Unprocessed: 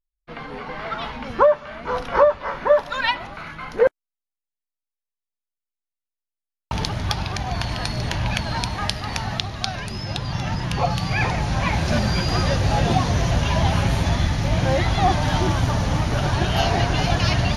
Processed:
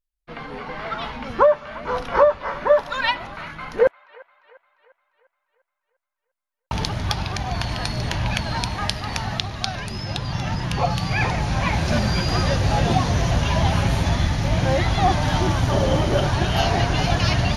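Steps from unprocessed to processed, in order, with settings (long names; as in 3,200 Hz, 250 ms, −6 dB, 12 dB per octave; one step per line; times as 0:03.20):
0:15.71–0:16.23: hollow resonant body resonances 380/540/3,100 Hz, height 15 dB → 12 dB
on a send: delay with a band-pass on its return 349 ms, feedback 49%, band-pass 1,500 Hz, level −19 dB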